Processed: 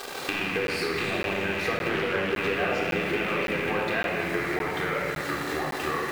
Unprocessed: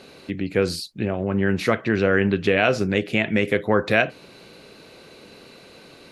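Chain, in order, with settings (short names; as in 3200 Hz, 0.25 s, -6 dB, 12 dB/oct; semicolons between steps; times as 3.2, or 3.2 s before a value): rattling part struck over -37 dBFS, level -12 dBFS; in parallel at -1 dB: limiter -13.5 dBFS, peak gain reduction 9.5 dB; on the sum: notch 2200 Hz, Q 7.8; echoes that change speed 0.156 s, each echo -3 st, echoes 2, each echo -6 dB; bit-crush 6-bit; bell 870 Hz +8 dB 2.6 oct; compressor 6:1, threshold -27 dBFS, peak gain reduction 20.5 dB; low shelf 330 Hz -8.5 dB; notches 50/100 Hz; shoebox room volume 3600 m³, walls mixed, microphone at 3.7 m; crackling interface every 0.56 s, samples 512, zero, from 0.67; 1.89–2.34 Doppler distortion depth 0.24 ms; gain -1.5 dB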